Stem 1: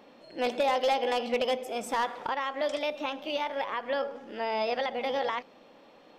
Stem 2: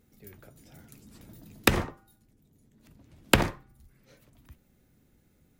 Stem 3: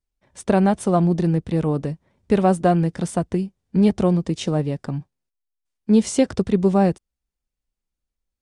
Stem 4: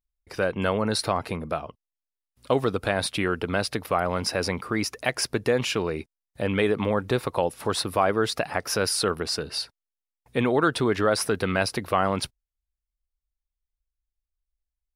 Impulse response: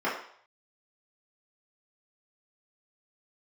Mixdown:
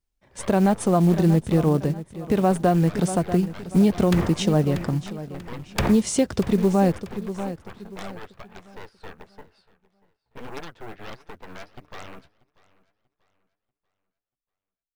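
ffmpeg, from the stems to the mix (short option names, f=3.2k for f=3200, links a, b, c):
-filter_complex "[1:a]highshelf=f=3.7k:g=-11.5,aeval=exprs='0.631*sin(PI/2*3.98*val(0)/0.631)':c=same,adelay=2450,volume=-12dB,asplit=2[a][b];[b]volume=-12.5dB[c];[2:a]volume=2dB,asplit=2[d][e];[e]volume=-15.5dB[f];[3:a]lowpass=1.8k,flanger=delay=6.6:depth=8.8:regen=33:speed=1.6:shape=sinusoidal,aeval=exprs='0.251*(cos(1*acos(clip(val(0)/0.251,-1,1)))-cos(1*PI/2))+0.112*(cos(3*acos(clip(val(0)/0.251,-1,1)))-cos(3*PI/2))+0.0794*(cos(5*acos(clip(val(0)/0.251,-1,1)))-cos(5*PI/2))+0.0447*(cos(6*acos(clip(val(0)/0.251,-1,1)))-cos(6*PI/2))+0.126*(cos(8*acos(clip(val(0)/0.251,-1,1)))-cos(8*PI/2))':c=same,volume=-16dB,asplit=2[g][h];[h]volume=-22.5dB[i];[c][f][i]amix=inputs=3:normalize=0,aecho=0:1:638|1276|1914|2552|3190:1|0.33|0.109|0.0359|0.0119[j];[a][d][g][j]amix=inputs=4:normalize=0,acrusher=bits=7:mode=log:mix=0:aa=0.000001,alimiter=limit=-10dB:level=0:latency=1:release=166"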